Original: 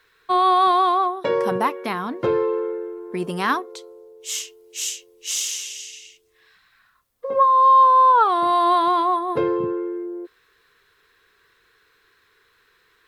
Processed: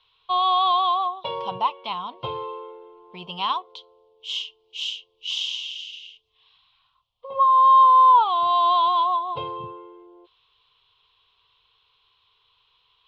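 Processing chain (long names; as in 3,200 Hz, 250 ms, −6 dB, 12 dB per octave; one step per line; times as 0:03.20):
drawn EQ curve 130 Hz 0 dB, 290 Hz −19 dB, 1,000 Hz +6 dB, 1,700 Hz −21 dB, 3,100 Hz +13 dB, 8,900 Hz −28 dB
level −4 dB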